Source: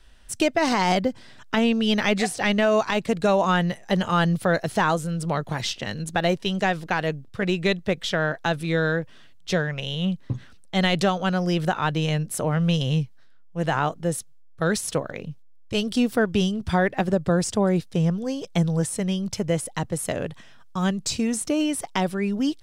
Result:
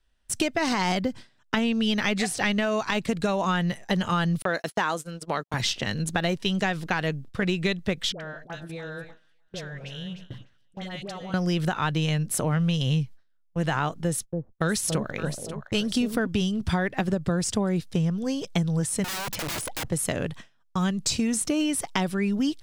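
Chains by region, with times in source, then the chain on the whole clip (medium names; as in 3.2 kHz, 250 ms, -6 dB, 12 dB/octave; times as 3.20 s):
4.42–5.54 s: high-pass 290 Hz + gate -35 dBFS, range -56 dB
8.12–11.34 s: compression 3:1, threshold -42 dBFS + phase dispersion highs, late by 85 ms, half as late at 1 kHz + two-band feedback delay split 650 Hz, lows 102 ms, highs 301 ms, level -11.5 dB
14.04–16.27 s: gate -42 dBFS, range -23 dB + echo whose repeats swap between lows and highs 283 ms, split 830 Hz, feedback 52%, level -6.5 dB
19.04–19.88 s: treble shelf 6.3 kHz -10 dB + integer overflow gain 29.5 dB + level flattener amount 50%
whole clip: gate with hold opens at -32 dBFS; dynamic bell 590 Hz, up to -5 dB, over -36 dBFS, Q 0.88; compression, threshold -24 dBFS; trim +3 dB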